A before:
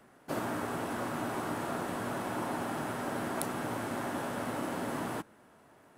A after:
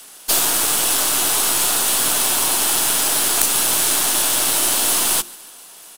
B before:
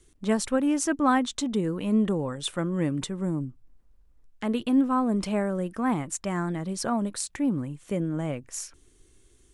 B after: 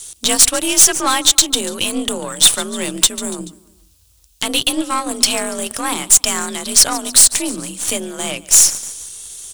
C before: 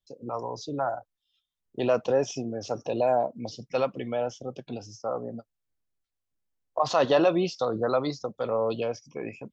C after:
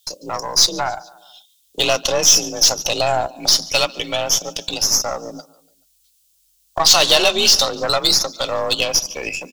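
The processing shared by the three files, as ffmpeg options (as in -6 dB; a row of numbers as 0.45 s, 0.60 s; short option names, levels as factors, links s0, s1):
-filter_complex "[0:a]aecho=1:1:144|288|432:0.075|0.0382|0.0195,afreqshift=43,tiltshelf=f=720:g=-6.5,asplit=2[s0][s1];[s1]acompressor=threshold=0.0224:ratio=6,volume=1.12[s2];[s0][s2]amix=inputs=2:normalize=0,aexciter=amount=5.8:drive=6.2:freq=2800,bandreject=f=50:t=h:w=6,bandreject=f=100:t=h:w=6,bandreject=f=150:t=h:w=6,bandreject=f=200:t=h:w=6,bandreject=f=250:t=h:w=6,bandreject=f=300:t=h:w=6,bandreject=f=350:t=h:w=6,acontrast=77,aeval=exprs='1*(cos(1*acos(clip(val(0)/1,-1,1)))-cos(1*PI/2))+0.0794*(cos(6*acos(clip(val(0)/1,-1,1)))-cos(6*PI/2))+0.0355*(cos(7*acos(clip(val(0)/1,-1,1)))-cos(7*PI/2))':c=same,volume=0.708"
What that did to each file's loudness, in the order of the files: +20.5 LU, +14.0 LU, +12.5 LU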